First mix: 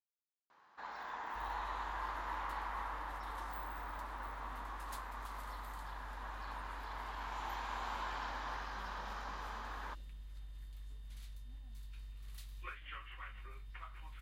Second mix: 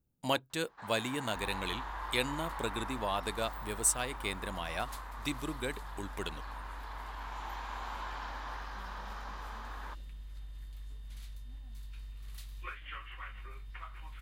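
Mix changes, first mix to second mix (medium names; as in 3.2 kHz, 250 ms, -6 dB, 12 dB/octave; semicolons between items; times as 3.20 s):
speech: unmuted; second sound +4.0 dB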